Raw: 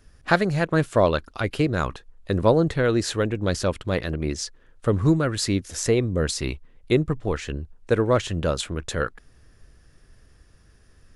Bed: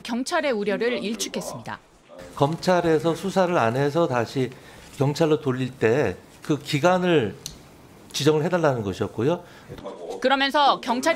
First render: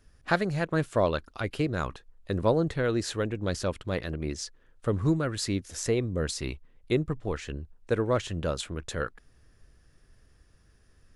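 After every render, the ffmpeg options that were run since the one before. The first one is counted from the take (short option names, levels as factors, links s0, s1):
-af "volume=0.501"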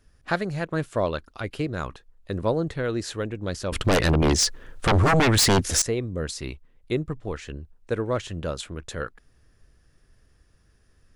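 -filter_complex "[0:a]asettb=1/sr,asplit=3[s0][s1][s2];[s0]atrim=end=3.724[s3];[s1]atrim=start=3.72:end=5.82,asetpts=PTS-STARTPTS,afade=t=in:d=0.004:c=qsin,afade=t=out:st=2.096:d=0.004:c=qsin,aeval=exprs='0.178*sin(PI/2*5.01*val(0)/0.178)':c=same[s4];[s2]atrim=start=5.816[s5];[s3][s4]acrossfade=d=0.004:c1=hsin:c2=qsin[s6];[s6][s5]acrossfade=d=0.004:c1=qsin:c2=hsin"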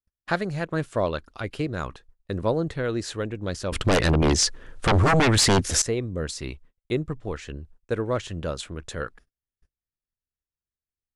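-af "lowpass=f=11000:w=0.5412,lowpass=f=11000:w=1.3066,agate=range=0.0126:threshold=0.00355:ratio=16:detection=peak"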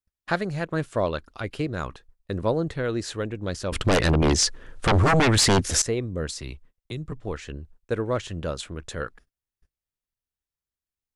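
-filter_complex "[0:a]asettb=1/sr,asplit=3[s0][s1][s2];[s0]atrim=end=6.354[s3];[s1]atrim=start=6.35:end=7.12,asetpts=PTS-STARTPTS,afade=t=in:d=0.004:c=qsin,afade=t=out:st=0.766:d=0.004:c=qsin,acrossover=split=160|3000[s4][s5][s6];[s5]acompressor=threshold=0.0141:ratio=5:attack=3.2:release=140:knee=2.83:detection=peak[s7];[s4][s7][s6]amix=inputs=3:normalize=0[s8];[s2]atrim=start=7.116[s9];[s3][s8]acrossfade=d=0.004:c1=hsin:c2=qsin[s10];[s10][s9]acrossfade=d=0.004:c1=qsin:c2=hsin"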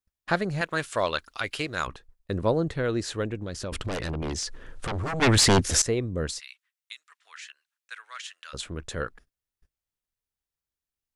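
-filter_complex "[0:a]asettb=1/sr,asplit=3[s0][s1][s2];[s0]atrim=end=0.614[s3];[s1]atrim=start=0.61:end=1.87,asetpts=PTS-STARTPTS,afade=t=in:d=0.004:c=qsin,afade=t=out:st=1.256:d=0.004:c=qsin,tiltshelf=f=750:g=-9[s4];[s2]atrim=start=1.866[s5];[s3][s4]acrossfade=d=0.004:c1=hsin:c2=qsin[s6];[s6][s5]acrossfade=d=0.004:c1=qsin:c2=hsin,asplit=3[s7][s8][s9];[s7]afade=t=out:st=3.36:d=0.02[s10];[s8]acompressor=threshold=0.0398:ratio=12:attack=3.2:release=140:knee=1:detection=peak,afade=t=in:st=3.36:d=0.02,afade=t=out:st=5.21:d=0.02[s11];[s9]afade=t=in:st=5.21:d=0.02[s12];[s10][s11][s12]amix=inputs=3:normalize=0,asplit=3[s13][s14][s15];[s13]afade=t=out:st=6.38:d=0.02[s16];[s14]highpass=f=1500:w=0.5412,highpass=f=1500:w=1.3066,afade=t=in:st=6.38:d=0.02,afade=t=out:st=8.53:d=0.02[s17];[s15]afade=t=in:st=8.53:d=0.02[s18];[s16][s17][s18]amix=inputs=3:normalize=0"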